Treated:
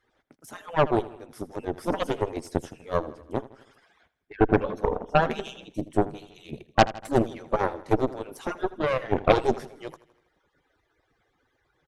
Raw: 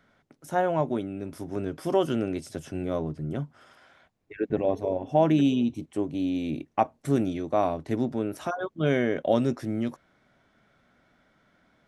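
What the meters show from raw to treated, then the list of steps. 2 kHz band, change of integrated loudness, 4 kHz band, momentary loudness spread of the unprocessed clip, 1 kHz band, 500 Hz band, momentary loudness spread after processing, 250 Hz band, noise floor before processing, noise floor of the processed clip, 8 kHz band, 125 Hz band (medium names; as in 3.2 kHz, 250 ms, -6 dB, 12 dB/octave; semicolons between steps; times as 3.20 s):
+5.0 dB, +0.5 dB, +3.5 dB, 10 LU, +3.5 dB, +1.0 dB, 18 LU, -3.5 dB, -67 dBFS, -73 dBFS, no reading, -0.5 dB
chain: harmonic-percussive separation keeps percussive; dynamic bell 410 Hz, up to +8 dB, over -42 dBFS, Q 0.79; Chebyshev shaper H 8 -14 dB, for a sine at -4.5 dBFS; on a send: feedback delay 81 ms, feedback 54%, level -17.5 dB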